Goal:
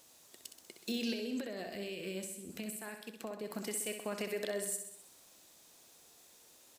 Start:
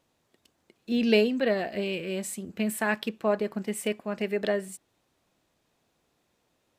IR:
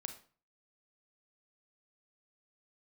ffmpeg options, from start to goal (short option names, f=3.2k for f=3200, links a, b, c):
-filter_complex "[0:a]bass=f=250:g=-8,treble=f=4k:g=15,acompressor=threshold=-30dB:ratio=6,alimiter=level_in=8dB:limit=-24dB:level=0:latency=1:release=333,volume=-8dB,asettb=1/sr,asplit=3[a][b][c];[a]atrim=end=1.134[d];[b]atrim=start=1.13:end=3.51,asetpts=PTS-STARTPTS,afade=t=in:d=0.004:c=qsin,afade=t=out:st=2.376:d=0.004:c=qsin,acrossover=split=330[e][f];[f]acompressor=threshold=-51dB:ratio=3[g];[e][g]amix=inputs=2:normalize=0[h];[c]atrim=start=3.506[i];[d][h]acrossfade=d=0.004:c1=hsin:c2=qsin[j];[j][i]acrossfade=d=0.004:c1=qsin:c2=hsin,aecho=1:1:64|128|192|256|320|384|448:0.398|0.235|0.139|0.0818|0.0482|0.0285|0.0168,volume=5dB"